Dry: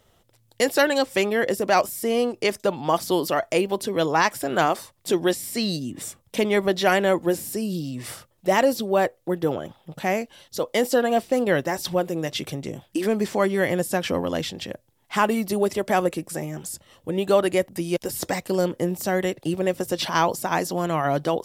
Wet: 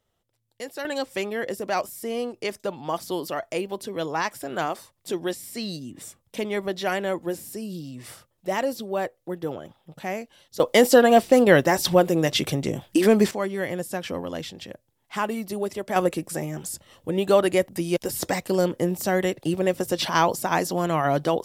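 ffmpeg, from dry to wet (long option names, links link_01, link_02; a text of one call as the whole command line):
ffmpeg -i in.wav -af "asetnsamples=nb_out_samples=441:pad=0,asendcmd='0.85 volume volume -6.5dB;10.6 volume volume 5.5dB;13.31 volume volume -6dB;15.96 volume volume 0.5dB',volume=-14.5dB" out.wav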